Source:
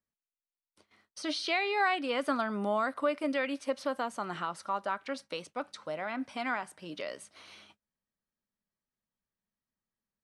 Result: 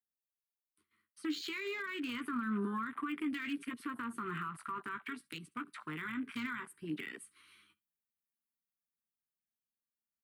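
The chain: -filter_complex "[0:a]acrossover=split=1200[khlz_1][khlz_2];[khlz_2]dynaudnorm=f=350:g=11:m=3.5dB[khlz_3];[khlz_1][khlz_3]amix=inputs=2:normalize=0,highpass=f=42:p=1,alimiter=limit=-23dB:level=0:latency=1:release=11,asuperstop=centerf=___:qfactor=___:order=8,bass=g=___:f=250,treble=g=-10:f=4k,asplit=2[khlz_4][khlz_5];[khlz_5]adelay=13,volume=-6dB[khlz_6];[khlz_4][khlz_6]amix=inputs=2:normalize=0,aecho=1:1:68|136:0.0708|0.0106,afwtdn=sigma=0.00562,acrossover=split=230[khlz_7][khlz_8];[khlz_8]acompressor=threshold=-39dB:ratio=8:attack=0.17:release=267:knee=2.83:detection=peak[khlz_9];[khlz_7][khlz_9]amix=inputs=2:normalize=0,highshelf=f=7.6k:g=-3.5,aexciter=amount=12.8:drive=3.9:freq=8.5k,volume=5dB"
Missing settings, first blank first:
650, 1, -3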